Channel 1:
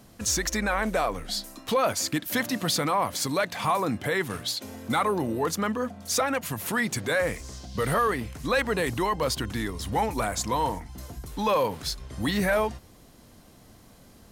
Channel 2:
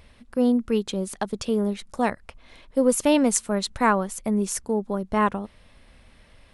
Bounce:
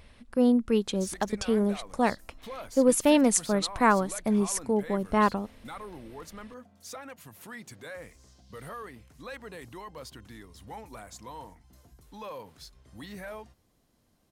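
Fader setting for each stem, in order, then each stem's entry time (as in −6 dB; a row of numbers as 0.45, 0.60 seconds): −17.0, −1.5 decibels; 0.75, 0.00 seconds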